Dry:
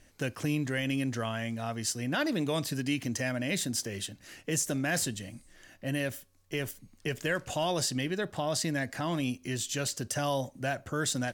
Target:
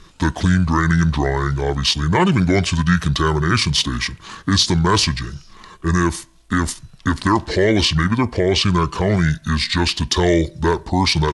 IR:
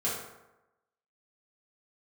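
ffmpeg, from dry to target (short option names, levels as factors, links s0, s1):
-filter_complex "[0:a]acontrast=73,asetrate=26990,aresample=44100,atempo=1.63392,asplit=2[s0][s1];[1:a]atrim=start_sample=2205,asetrate=61740,aresample=44100[s2];[s1][s2]afir=irnorm=-1:irlink=0,volume=0.0376[s3];[s0][s3]amix=inputs=2:normalize=0,volume=2.51"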